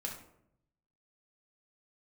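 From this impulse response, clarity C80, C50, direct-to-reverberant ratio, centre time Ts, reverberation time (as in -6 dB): 10.0 dB, 6.0 dB, -0.5 dB, 27 ms, 0.75 s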